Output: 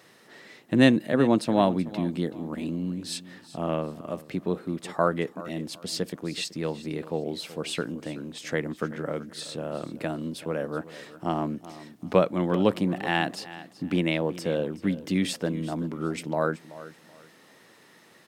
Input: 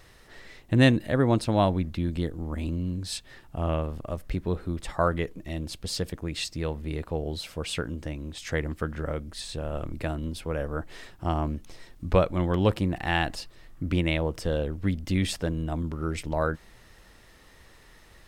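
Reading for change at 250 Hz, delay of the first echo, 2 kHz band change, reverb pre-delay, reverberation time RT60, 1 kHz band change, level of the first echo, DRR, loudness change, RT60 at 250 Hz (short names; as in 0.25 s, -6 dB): +2.5 dB, 0.379 s, +0.5 dB, none, none, +1.0 dB, -16.5 dB, none, +0.5 dB, none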